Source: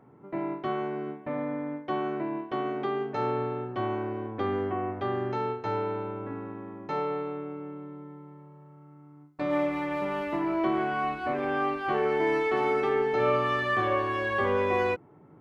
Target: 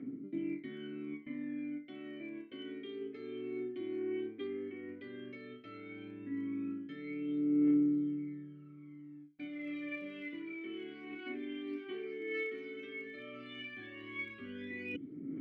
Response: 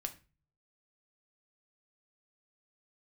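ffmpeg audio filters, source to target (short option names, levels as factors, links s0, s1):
-filter_complex "[0:a]areverse,acompressor=threshold=0.0126:ratio=12,areverse,asplit=3[s0][s1][s2];[s0]bandpass=f=270:t=q:w=8,volume=1[s3];[s1]bandpass=f=2290:t=q:w=8,volume=0.501[s4];[s2]bandpass=f=3010:t=q:w=8,volume=0.355[s5];[s3][s4][s5]amix=inputs=3:normalize=0,aphaser=in_gain=1:out_gain=1:delay=2.9:decay=0.72:speed=0.13:type=triangular,volume=3.76"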